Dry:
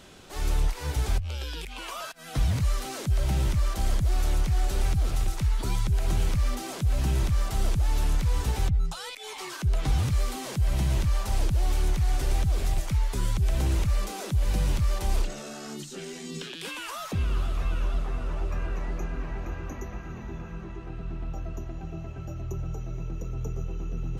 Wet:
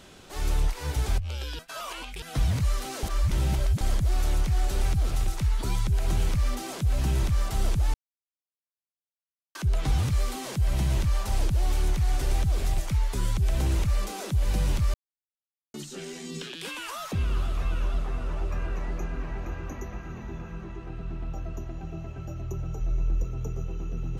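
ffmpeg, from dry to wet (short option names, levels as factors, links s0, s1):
-filter_complex "[0:a]asplit=3[s0][s1][s2];[s0]afade=t=out:st=22.8:d=0.02[s3];[s1]asubboost=boost=4:cutoff=67,afade=t=in:st=22.8:d=0.02,afade=t=out:st=23.23:d=0.02[s4];[s2]afade=t=in:st=23.23:d=0.02[s5];[s3][s4][s5]amix=inputs=3:normalize=0,asplit=9[s6][s7][s8][s9][s10][s11][s12][s13][s14];[s6]atrim=end=1.592[s15];[s7]atrim=start=1.588:end=2.222,asetpts=PTS-STARTPTS,areverse[s16];[s8]atrim=start=2.218:end=3.032[s17];[s9]atrim=start=3.028:end=3.812,asetpts=PTS-STARTPTS,areverse[s18];[s10]atrim=start=3.808:end=7.94,asetpts=PTS-STARTPTS,afade=t=out:st=4.128:d=0.004:c=hsin[s19];[s11]atrim=start=7.94:end=9.55,asetpts=PTS-STARTPTS,volume=0[s20];[s12]atrim=start=9.55:end=14.94,asetpts=PTS-STARTPTS,afade=t=in:d=0.004:c=hsin,afade=t=out:st=5.386:d=0.004:c=hsin[s21];[s13]atrim=start=14.94:end=15.74,asetpts=PTS-STARTPTS,volume=0[s22];[s14]atrim=start=15.74,asetpts=PTS-STARTPTS,afade=t=in:d=0.004:c=hsin[s23];[s15][s16]acrossfade=d=0.004:c1=hsin:c2=hsin[s24];[s24][s17]acrossfade=d=0.004:c1=hsin:c2=hsin[s25];[s25][s18]acrossfade=d=0.004:c1=hsin:c2=hsin[s26];[s19][s20][s21][s22][s23]concat=n=5:v=0:a=1[s27];[s26][s27]acrossfade=d=0.004:c1=hsin:c2=hsin"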